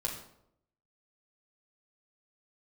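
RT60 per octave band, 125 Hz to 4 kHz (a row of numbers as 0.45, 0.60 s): 0.85, 0.85, 0.80, 0.70, 0.55, 0.50 s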